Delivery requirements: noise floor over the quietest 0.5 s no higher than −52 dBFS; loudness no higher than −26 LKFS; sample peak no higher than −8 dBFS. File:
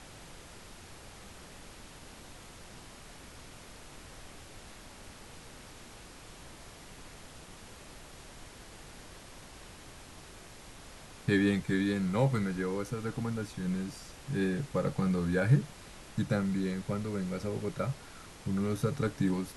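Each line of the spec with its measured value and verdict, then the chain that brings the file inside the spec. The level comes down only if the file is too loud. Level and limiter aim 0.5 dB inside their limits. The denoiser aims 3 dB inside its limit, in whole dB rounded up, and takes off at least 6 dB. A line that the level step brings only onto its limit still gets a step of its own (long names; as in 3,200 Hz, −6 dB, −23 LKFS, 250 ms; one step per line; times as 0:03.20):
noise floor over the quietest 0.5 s −50 dBFS: out of spec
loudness −32.0 LKFS: in spec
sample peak −14.5 dBFS: in spec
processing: broadband denoise 6 dB, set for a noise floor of −50 dBFS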